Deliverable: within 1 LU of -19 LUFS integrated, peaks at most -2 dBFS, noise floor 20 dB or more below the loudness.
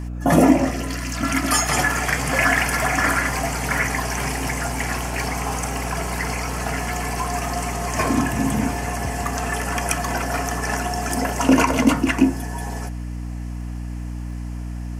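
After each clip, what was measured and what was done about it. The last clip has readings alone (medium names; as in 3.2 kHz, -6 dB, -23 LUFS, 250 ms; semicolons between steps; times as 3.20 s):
tick rate 20 per s; hum 60 Hz; highest harmonic 300 Hz; hum level -26 dBFS; loudness -22.0 LUFS; peak level -2.5 dBFS; loudness target -19.0 LUFS
-> de-click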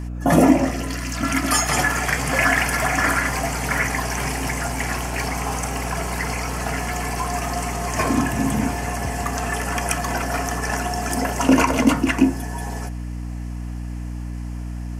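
tick rate 0.067 per s; hum 60 Hz; highest harmonic 300 Hz; hum level -27 dBFS
-> de-hum 60 Hz, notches 5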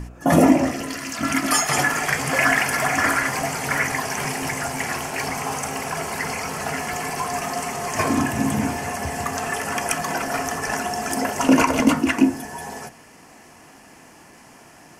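hum not found; loudness -22.0 LUFS; peak level -3.0 dBFS; loudness target -19.0 LUFS
-> trim +3 dB; peak limiter -2 dBFS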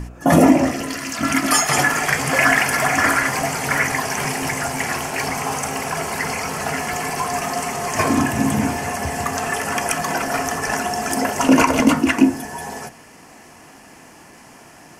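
loudness -19.0 LUFS; peak level -2.0 dBFS; noise floor -45 dBFS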